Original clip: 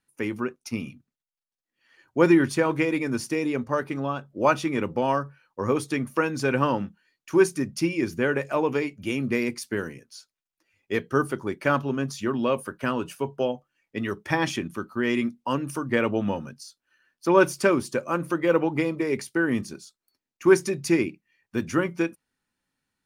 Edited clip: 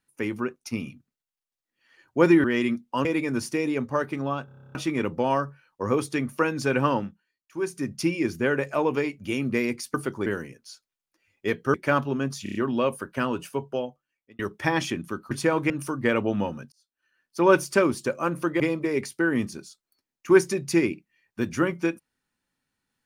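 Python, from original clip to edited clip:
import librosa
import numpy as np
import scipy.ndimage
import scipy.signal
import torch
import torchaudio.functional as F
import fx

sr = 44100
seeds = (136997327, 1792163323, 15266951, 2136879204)

y = fx.edit(x, sr, fx.swap(start_s=2.44, length_s=0.39, other_s=14.97, other_length_s=0.61),
    fx.stutter_over(start_s=4.23, slice_s=0.03, count=10),
    fx.fade_down_up(start_s=6.75, length_s=0.94, db=-14.0, fade_s=0.46, curve='qua'),
    fx.move(start_s=11.2, length_s=0.32, to_s=9.72),
    fx.stutter(start_s=12.21, slice_s=0.03, count=5),
    fx.fade_out_span(start_s=13.17, length_s=0.88),
    fx.fade_in_span(start_s=16.6, length_s=0.77),
    fx.cut(start_s=18.48, length_s=0.28), tone=tone)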